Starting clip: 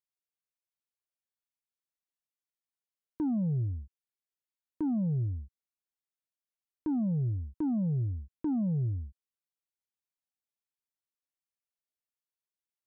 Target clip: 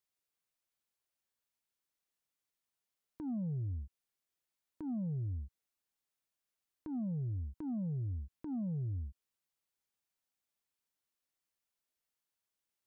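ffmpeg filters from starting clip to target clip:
-af "acompressor=threshold=0.01:ratio=5,alimiter=level_in=5.31:limit=0.0631:level=0:latency=1:release=125,volume=0.188,volume=1.68"

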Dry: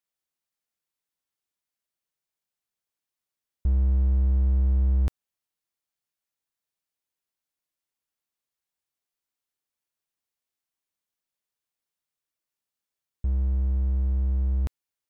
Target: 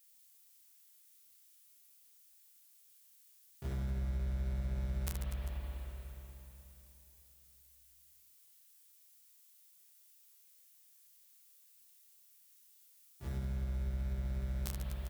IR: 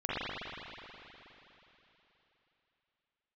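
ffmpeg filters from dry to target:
-filter_complex "[0:a]asplit=4[s0][s1][s2][s3];[s1]asetrate=33038,aresample=44100,atempo=1.33484,volume=0.355[s4];[s2]asetrate=52444,aresample=44100,atempo=0.840896,volume=0.501[s5];[s3]asetrate=88200,aresample=44100,atempo=0.5,volume=0.251[s6];[s0][s4][s5][s6]amix=inputs=4:normalize=0,equalizer=f=130:w=0.49:g=-7,asplit=2[s7][s8];[s8]adynamicsmooth=sensitivity=1.5:basefreq=520,volume=0.891[s9];[s7][s9]amix=inputs=2:normalize=0,aderivative,aecho=1:1:30|75|142.5|243.8|395.6:0.631|0.398|0.251|0.158|0.1,asplit=2[s10][s11];[1:a]atrim=start_sample=2205,lowshelf=f=200:g=10.5[s12];[s11][s12]afir=irnorm=-1:irlink=0,volume=0.266[s13];[s10][s13]amix=inputs=2:normalize=0,acompressor=threshold=0.00251:ratio=4,volume=7.08"

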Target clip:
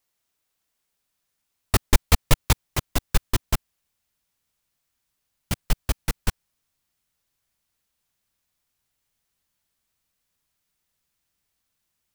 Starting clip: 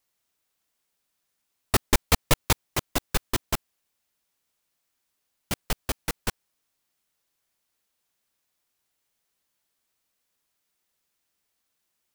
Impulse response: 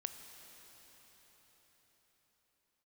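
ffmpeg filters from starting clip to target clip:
-af "asubboost=boost=2.5:cutoff=200"

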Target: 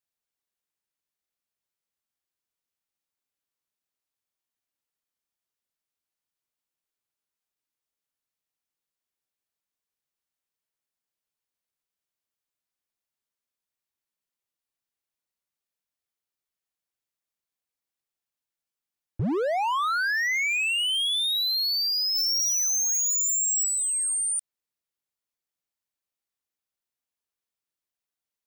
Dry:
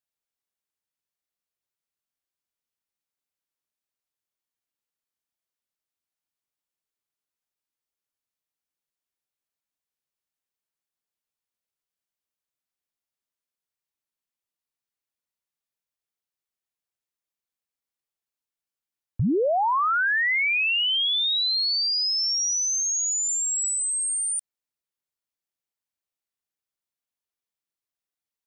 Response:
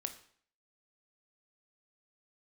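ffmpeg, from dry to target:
-filter_complex "[0:a]asplit=3[s0][s1][s2];[s0]afade=t=out:st=22.15:d=0.02[s3];[s1]acontrast=67,afade=t=in:st=22.15:d=0.02,afade=t=out:st=23.63:d=0.02[s4];[s2]afade=t=in:st=23.63:d=0.02[s5];[s3][s4][s5]amix=inputs=3:normalize=0,asoftclip=type=hard:threshold=0.0631"

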